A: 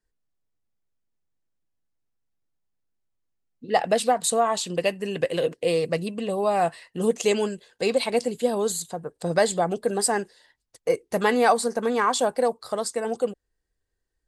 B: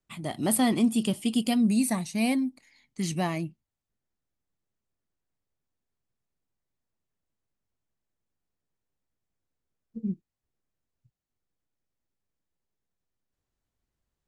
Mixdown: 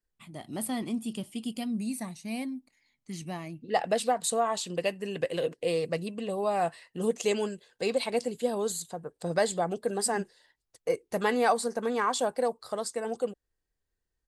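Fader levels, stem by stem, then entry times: -5.5 dB, -9.0 dB; 0.00 s, 0.10 s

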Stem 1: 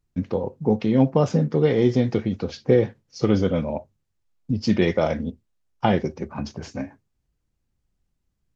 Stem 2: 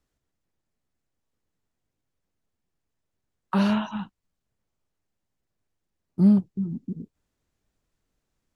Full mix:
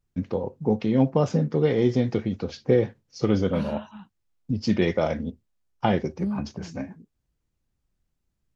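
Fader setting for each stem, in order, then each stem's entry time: -2.5 dB, -11.5 dB; 0.00 s, 0.00 s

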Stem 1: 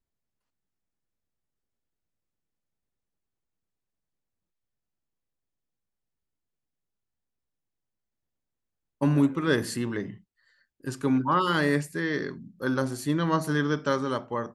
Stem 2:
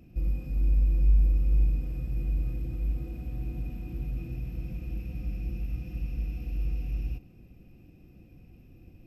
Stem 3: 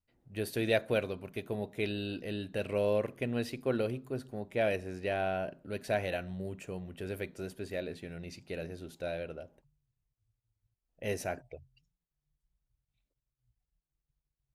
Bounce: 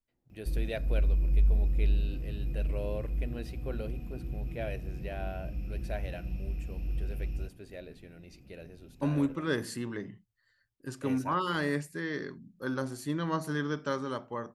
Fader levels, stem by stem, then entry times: -6.5 dB, -3.0 dB, -8.0 dB; 0.00 s, 0.30 s, 0.00 s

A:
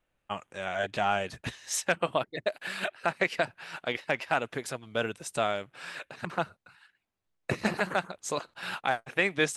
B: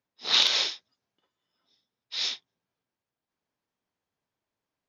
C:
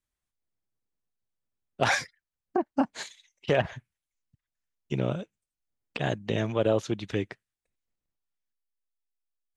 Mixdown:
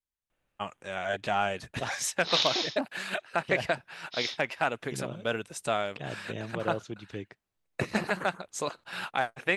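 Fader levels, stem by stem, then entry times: -0.5 dB, -5.5 dB, -9.5 dB; 0.30 s, 2.00 s, 0.00 s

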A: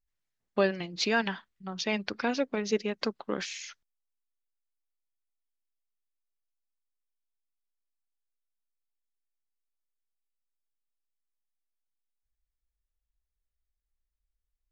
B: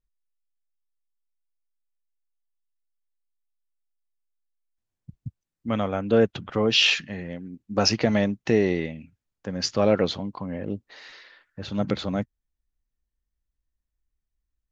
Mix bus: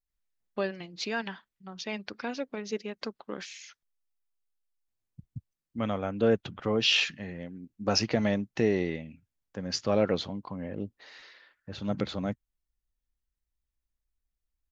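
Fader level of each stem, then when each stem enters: -5.5 dB, -5.0 dB; 0.00 s, 0.10 s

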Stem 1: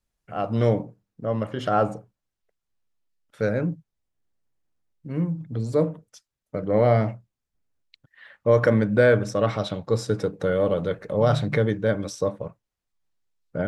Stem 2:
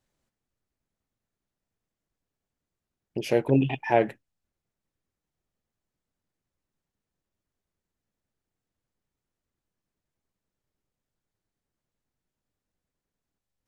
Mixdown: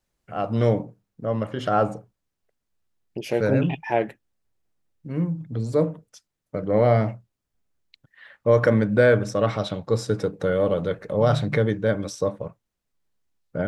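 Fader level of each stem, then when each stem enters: +0.5 dB, -1.0 dB; 0.00 s, 0.00 s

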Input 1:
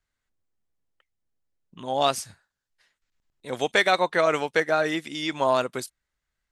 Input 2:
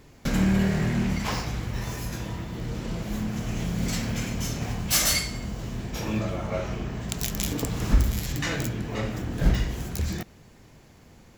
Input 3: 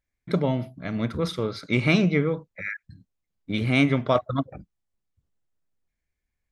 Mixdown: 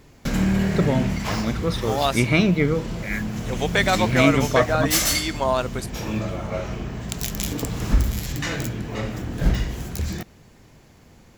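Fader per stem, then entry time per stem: 0.0 dB, +1.5 dB, +2.0 dB; 0.00 s, 0.00 s, 0.45 s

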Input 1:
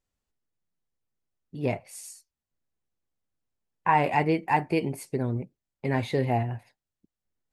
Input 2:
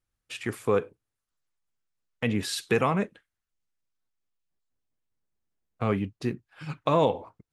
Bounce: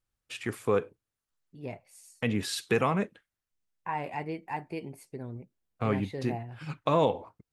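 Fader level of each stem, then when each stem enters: -11.5 dB, -2.0 dB; 0.00 s, 0.00 s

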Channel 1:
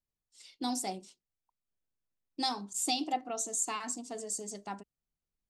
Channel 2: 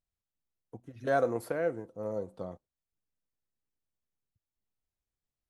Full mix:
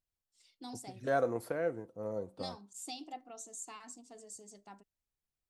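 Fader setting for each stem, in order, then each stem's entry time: -12.5 dB, -3.0 dB; 0.00 s, 0.00 s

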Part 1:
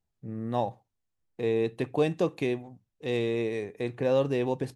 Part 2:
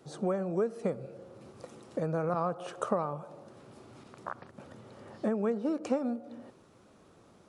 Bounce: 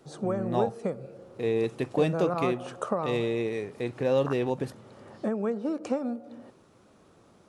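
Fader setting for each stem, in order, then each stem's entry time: 0.0 dB, +1.0 dB; 0.00 s, 0.00 s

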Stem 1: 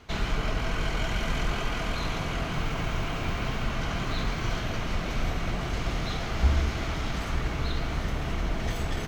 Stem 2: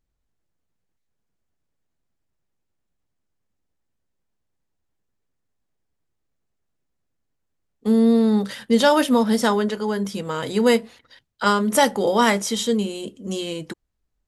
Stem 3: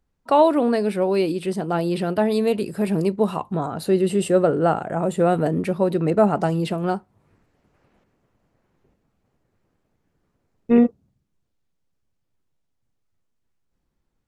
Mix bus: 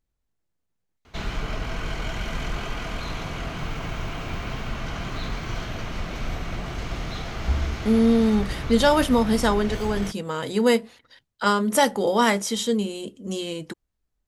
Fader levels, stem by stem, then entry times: -1.0 dB, -2.0 dB, mute; 1.05 s, 0.00 s, mute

